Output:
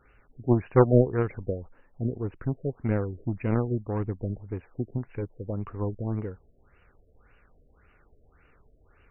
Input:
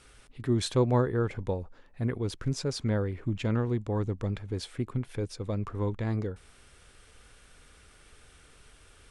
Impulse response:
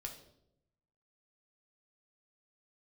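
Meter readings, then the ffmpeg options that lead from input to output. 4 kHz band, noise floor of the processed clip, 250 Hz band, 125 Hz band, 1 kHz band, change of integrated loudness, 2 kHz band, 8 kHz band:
below −25 dB, −62 dBFS, +2.5 dB, +1.5 dB, +2.5 dB, +2.5 dB, −0.5 dB, below −35 dB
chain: -af "aeval=exprs='0.178*(cos(1*acos(clip(val(0)/0.178,-1,1)))-cos(1*PI/2))+0.0447*(cos(3*acos(clip(val(0)/0.178,-1,1)))-cos(3*PI/2))+0.00141*(cos(5*acos(clip(val(0)/0.178,-1,1)))-cos(5*PI/2))':channel_layout=same,afftfilt=real='re*lt(b*sr/1024,670*pow(3000/670,0.5+0.5*sin(2*PI*1.8*pts/sr)))':imag='im*lt(b*sr/1024,670*pow(3000/670,0.5+0.5*sin(2*PI*1.8*pts/sr)))':win_size=1024:overlap=0.75,volume=8.5dB"

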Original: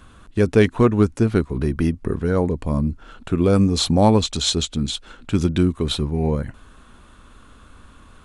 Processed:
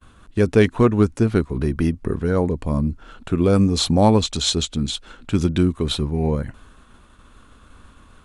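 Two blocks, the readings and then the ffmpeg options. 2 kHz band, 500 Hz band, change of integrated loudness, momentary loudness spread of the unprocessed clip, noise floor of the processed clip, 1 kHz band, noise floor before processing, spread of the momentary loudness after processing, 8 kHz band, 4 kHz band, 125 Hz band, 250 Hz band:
0.0 dB, 0.0 dB, 0.0 dB, 10 LU, −50 dBFS, 0.0 dB, −48 dBFS, 10 LU, 0.0 dB, 0.0 dB, 0.0 dB, 0.0 dB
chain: -af "agate=range=-33dB:threshold=-43dB:ratio=3:detection=peak"

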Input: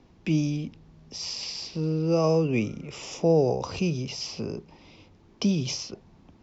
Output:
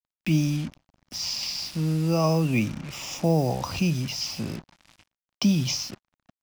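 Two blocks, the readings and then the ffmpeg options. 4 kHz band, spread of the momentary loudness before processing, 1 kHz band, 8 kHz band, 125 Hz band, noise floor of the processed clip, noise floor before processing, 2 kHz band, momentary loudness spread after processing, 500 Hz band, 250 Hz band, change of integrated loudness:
+4.0 dB, 15 LU, +2.5 dB, can't be measured, +3.5 dB, below −85 dBFS, −56 dBFS, +4.0 dB, 12 LU, −4.0 dB, +2.0 dB, +1.0 dB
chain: -af "acrusher=bits=6:mix=0:aa=0.5,equalizer=frequency=430:width=2.6:gain=-14.5,volume=4dB"

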